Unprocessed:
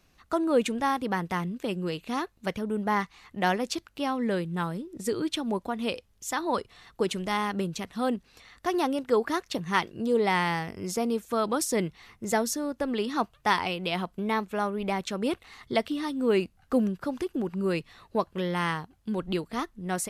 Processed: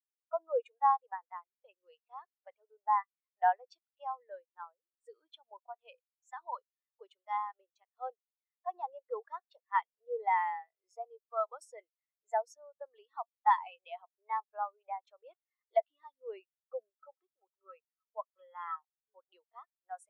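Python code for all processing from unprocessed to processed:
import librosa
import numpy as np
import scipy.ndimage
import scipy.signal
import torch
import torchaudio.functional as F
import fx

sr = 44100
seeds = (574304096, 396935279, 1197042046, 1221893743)

y = fx.chain(x, sr, fx.highpass(hz=370.0, slope=12),
    fx.air_absorb(metres=230.0),
    fx.small_body(hz=(1300.0, 3300.0), ring_ms=85, db=13), at=(16.9, 18.96))
y = scipy.signal.sosfilt(scipy.signal.butter(4, 600.0, 'highpass', fs=sr, output='sos'), y)
y = fx.spectral_expand(y, sr, expansion=2.5)
y = y * 10.0 ** (-5.0 / 20.0)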